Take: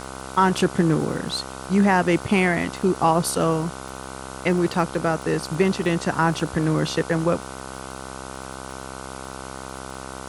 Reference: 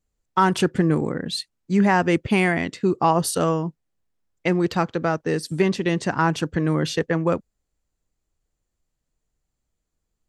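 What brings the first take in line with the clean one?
click removal
hum removal 65.8 Hz, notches 23
broadband denoise 30 dB, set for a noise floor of −36 dBFS

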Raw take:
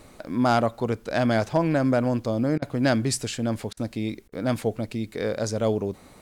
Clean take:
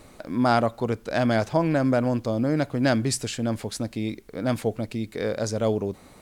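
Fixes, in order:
clipped peaks rebuilt −11.5 dBFS
repair the gap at 0:02.58/0:03.73/0:04.28, 40 ms

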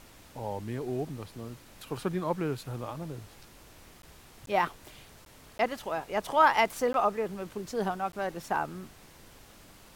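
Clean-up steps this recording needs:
repair the gap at 0:04.02/0:04.46/0:05.25/0:05.58/0:06.93/0:08.12, 12 ms
broadband denoise 22 dB, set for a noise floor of −54 dBFS

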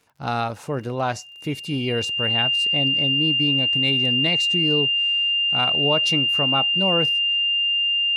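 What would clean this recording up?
click removal
notch filter 2,800 Hz, Q 30

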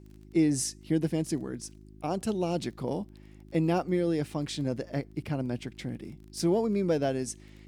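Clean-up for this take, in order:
click removal
hum removal 51.9 Hz, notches 7

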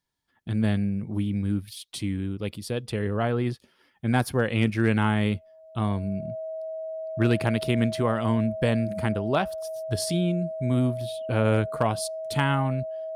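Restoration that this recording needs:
clipped peaks rebuilt −12.5 dBFS
notch filter 640 Hz, Q 30

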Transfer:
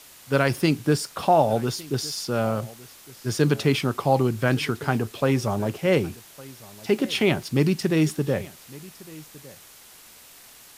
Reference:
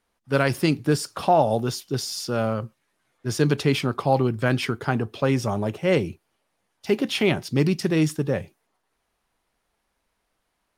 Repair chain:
broadband denoise 27 dB, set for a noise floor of −49 dBFS
echo removal 1,159 ms −21.5 dB

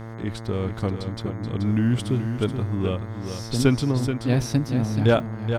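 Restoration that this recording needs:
hum removal 113 Hz, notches 19
repair the gap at 0:03.38/0:05.20, 1.6 ms
echo removal 429 ms −8 dB

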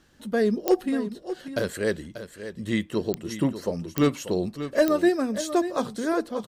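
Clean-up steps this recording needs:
click removal
echo removal 588 ms −11.5 dB

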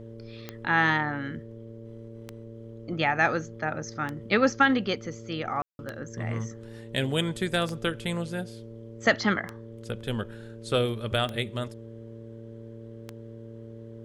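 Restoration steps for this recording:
click removal
hum removal 113.9 Hz, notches 5
notch filter 420 Hz, Q 30
ambience match 0:05.62–0:05.79

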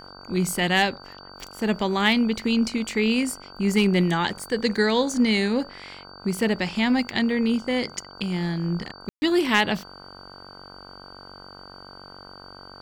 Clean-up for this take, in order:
clipped peaks rebuilt −9.5 dBFS
hum removal 47.1 Hz, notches 33
notch filter 4,600 Hz, Q 30
ambience match 0:09.09–0:09.22

